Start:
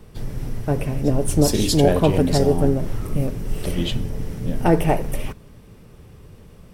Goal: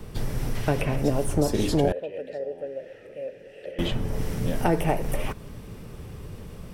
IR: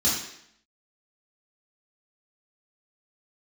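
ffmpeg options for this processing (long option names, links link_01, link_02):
-filter_complex "[0:a]asettb=1/sr,asplit=3[link_01][link_02][link_03];[link_01]atrim=end=0.554[link_04];[link_02]atrim=start=0.55:end=0.96,asetpts=PTS-STARTPTS,afade=type=in:duration=0.004:curve=qsin,afade=type=out:start_time=0.406:duration=0.004:curve=qsin,equalizer=frequency=3000:width_type=o:width=1.8:gain=8[link_05];[link_03]atrim=start=0.956[link_06];[link_04][link_05]acrossfade=duration=0.004:curve1=hsin:curve2=qsin[link_07];[link_07][link_06]acrossfade=duration=0.004:curve1=qsin:curve2=hsin,acrossover=split=480|1900[link_08][link_09][link_10];[link_08]acompressor=threshold=-29dB:ratio=4[link_11];[link_09]acompressor=threshold=-31dB:ratio=4[link_12];[link_10]acompressor=threshold=-44dB:ratio=4[link_13];[link_11][link_12][link_13]amix=inputs=3:normalize=0,asettb=1/sr,asplit=3[link_14][link_15][link_16];[link_14]atrim=end=1.924[link_17];[link_15]atrim=start=1.92:end=3.79,asetpts=PTS-STARTPTS,afade=type=in:duration=0.004:curve=qsin,afade=type=out:start_time=1.866:duration=0.004:curve=qsin,asplit=3[link_18][link_19][link_20];[link_18]bandpass=frequency=530:width_type=q:width=8,volume=0dB[link_21];[link_19]bandpass=frequency=1840:width_type=q:width=8,volume=-6dB[link_22];[link_20]bandpass=frequency=2480:width_type=q:width=8,volume=-9dB[link_23];[link_21][link_22][link_23]amix=inputs=3:normalize=0[link_24];[link_16]atrim=start=3.786[link_25];[link_17][link_24]acrossfade=duration=0.004:curve1=hsin:curve2=qsin[link_26];[link_26][link_25]acrossfade=duration=0.004:curve1=qsin:curve2=hsin,volume=5dB"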